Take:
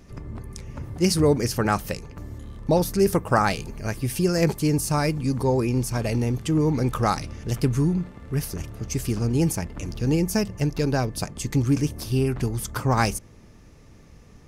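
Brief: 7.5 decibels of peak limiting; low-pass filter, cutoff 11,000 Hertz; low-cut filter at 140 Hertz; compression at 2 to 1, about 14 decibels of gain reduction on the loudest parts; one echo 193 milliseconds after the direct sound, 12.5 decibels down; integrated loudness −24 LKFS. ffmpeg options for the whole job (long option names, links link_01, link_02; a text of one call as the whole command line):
ffmpeg -i in.wav -af "highpass=140,lowpass=11000,acompressor=threshold=-42dB:ratio=2,alimiter=level_in=1.5dB:limit=-24dB:level=0:latency=1,volume=-1.5dB,aecho=1:1:193:0.237,volume=14dB" out.wav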